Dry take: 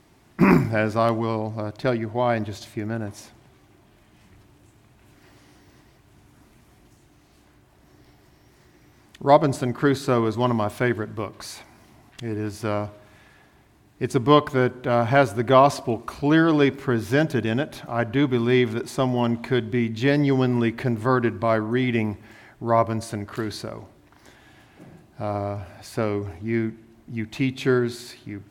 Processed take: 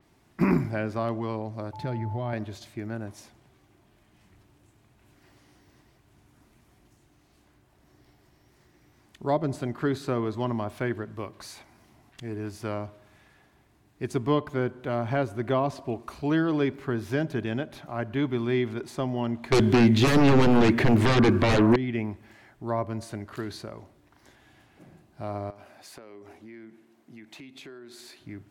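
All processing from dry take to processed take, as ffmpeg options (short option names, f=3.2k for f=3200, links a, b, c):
-filter_complex "[0:a]asettb=1/sr,asplit=3[a][b][c];[a]atrim=end=1.734[d];[b]atrim=start=1.73:end=2.33,asetpts=PTS-STARTPTS,afade=t=in:d=0.004:c=qsin,afade=t=out:st=0.596:d=0.004:c=qsin,equalizer=f=98:w=0.89:g=13.5,acompressor=threshold=-22dB:ratio=4:attack=3.2:release=140:knee=1:detection=peak,aeval=exprs='val(0)+0.0224*sin(2*PI*870*n/s)':c=same[e];[c]atrim=start=2.326[f];[d][e]acrossfade=d=0.004:c1=hsin:c2=qsin[g];[g][f]acrossfade=d=0.004:c1=qsin:c2=hsin,asettb=1/sr,asplit=3[h][i][j];[h]atrim=end=19.524[k];[i]atrim=start=19.52:end=21.76,asetpts=PTS-STARTPTS,afade=t=in:d=0.004:c=qsin,afade=t=out:st=2.236:d=0.004:c=qsin,highpass=88,tiltshelf=f=710:g=-3,aeval=exprs='0.501*sin(PI/2*7.08*val(0)/0.501)':c=same[l];[j]atrim=start=21.756[m];[k][l]acrossfade=d=0.004:c1=hsin:c2=qsin[n];[n][m]acrossfade=d=0.004:c1=qsin:c2=hsin,asettb=1/sr,asplit=3[o][p][q];[o]atrim=end=25.504[r];[p]atrim=start=25.5:end=28.2,asetpts=PTS-STARTPTS,afade=t=in:d=0.004:c=qsin,afade=t=out:st=2.696:d=0.004:c=qsin,highpass=260,acompressor=threshold=-36dB:ratio=8:attack=3.2:release=140:knee=1:detection=peak[s];[q]atrim=start=28.196[t];[r][s]acrossfade=d=0.004:c1=hsin:c2=qsin[u];[u][t]acrossfade=d=0.004:c1=qsin:c2=hsin,acrossover=split=470[v][w];[w]acompressor=threshold=-26dB:ratio=2[x];[v][x]amix=inputs=2:normalize=0,adynamicequalizer=threshold=0.00631:dfrequency=4800:dqfactor=0.7:tfrequency=4800:tqfactor=0.7:attack=5:release=100:ratio=0.375:range=3.5:mode=cutabove:tftype=highshelf,volume=-6dB"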